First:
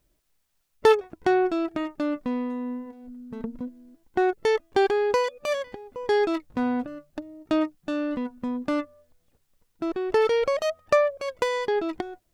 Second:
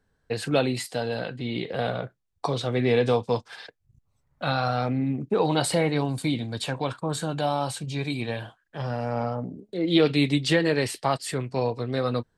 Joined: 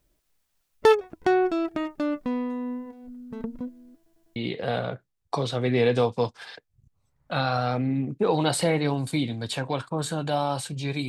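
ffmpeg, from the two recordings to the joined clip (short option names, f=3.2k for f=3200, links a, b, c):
-filter_complex "[0:a]apad=whole_dur=11.08,atrim=end=11.08,asplit=4[a][b][c][d];[a]atrim=end=4.062[e];[b]atrim=start=3.958:end=4.062[f];[c]atrim=start=3.958:end=4.062[g];[d]atrim=start=3.958:end=4.062[h];[1:a]atrim=start=1.468:end=8.19[i];[e][f]acrossfade=d=0.004:c1=hsin:c2=hsin[j];[j][g]acrossfade=d=0.004:c1=hsin:c2=hsin[k];[k][h]acrossfade=d=0.004:c1=hsin:c2=hsin[l];[l][i]acrossfade=d=0.004:c1=hsin:c2=hsin"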